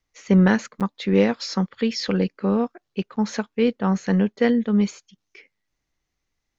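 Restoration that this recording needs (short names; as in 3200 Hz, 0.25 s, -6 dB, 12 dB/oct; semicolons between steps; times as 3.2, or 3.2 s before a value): interpolate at 0.8, 7.6 ms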